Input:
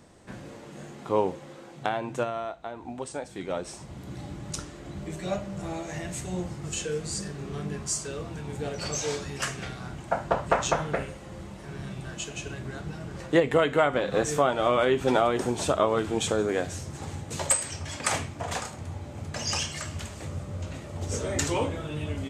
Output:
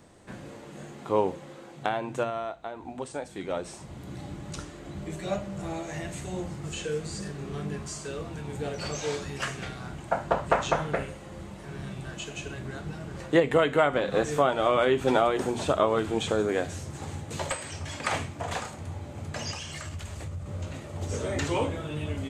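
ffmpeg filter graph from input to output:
-filter_complex "[0:a]asettb=1/sr,asplit=3[a][b][c];[a]atrim=end=19.514[d];[b]atrim=start=19.51:end=20.46,asetpts=PTS-STARTPTS,afade=t=in:d=0.004:c=qsin,afade=t=out:st=0.946:d=0.004:c=qsin,asubboost=boost=9:cutoff=130,acompressor=threshold=-33dB:ratio=4:attack=3.2:release=140:knee=1:detection=peak[e];[c]atrim=start=20.456[f];[d][e]acrossfade=d=0.004:c1=hsin:c2=qsin[g];[g][f]acrossfade=d=0.004:c1=qsin:c2=hsin,equalizer=f=5.4k:w=4.1:g=-3,acrossover=split=4700[h][i];[i]acompressor=threshold=-42dB:ratio=4:attack=1:release=60[j];[h][j]amix=inputs=2:normalize=0,bandreject=f=60:t=h:w=6,bandreject=f=120:t=h:w=6,bandreject=f=180:t=h:w=6,bandreject=f=240:t=h:w=6"

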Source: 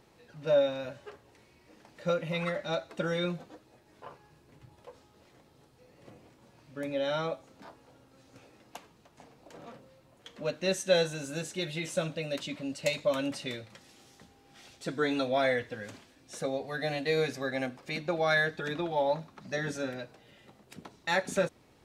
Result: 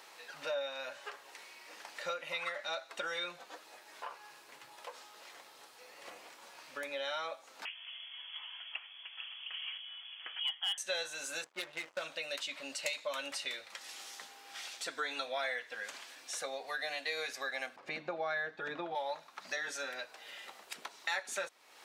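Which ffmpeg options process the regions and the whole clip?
-filter_complex "[0:a]asettb=1/sr,asplit=3[a][b][c];[a]atrim=end=7.654[d];[b]atrim=start=7.65:end=10.78,asetpts=PTS-STARTPTS,afade=t=in:d=0.004:c=qsin,afade=t=out:st=3.126:d=0.004:c=qsin,lowpass=f=3k:t=q:w=0.5098,lowpass=f=3k:t=q:w=0.6013,lowpass=f=3k:t=q:w=0.9,lowpass=f=3k:t=q:w=2.563,afreqshift=-3500,asubboost=boost=10.5:cutoff=55,asoftclip=type=hard:threshold=-23dB[e];[c]atrim=start=10.776[f];[d][e]acrossfade=d=0.004:c1=hsin:c2=qsin[g];[g][f]acrossfade=d=0.004:c1=qsin:c2=hsin,asettb=1/sr,asplit=3[h][i][j];[h]atrim=end=11.444[k];[i]atrim=start=11.44:end=12.02,asetpts=PTS-STARTPTS,afade=t=in:d=0.004:c=qsin,afade=t=out:st=0.576:d=0.004:c=qsin,adynamicsmooth=sensitivity=6:basefreq=540,aeval=exprs='sgn(val(0))*max(abs(val(0))-0.00141,0)':c=same[l];[j]atrim=start=12.016[m];[k][l]acrossfade=d=0.004:c1=hsin:c2=qsin[n];[n][m]acrossfade=d=0.004:c1=qsin:c2=hsin,asettb=1/sr,asplit=3[o][p][q];[o]atrim=end=17.764[r];[p]atrim=start=17.76:end=18.95,asetpts=PTS-STARTPTS,afade=t=in:d=0.004:c=qsin,afade=t=out:st=1.186:d=0.004:c=qsin,lowpass=f=1.2k:p=1,equalizer=f=88:w=0.32:g=15[s];[q]atrim=start=18.946[t];[r][s]acrossfade=d=0.004:c1=hsin:c2=qsin[u];[u][t]acrossfade=d=0.004:c1=qsin:c2=hsin,highpass=960,acompressor=threshold=-55dB:ratio=2.5,volume=12.5dB"

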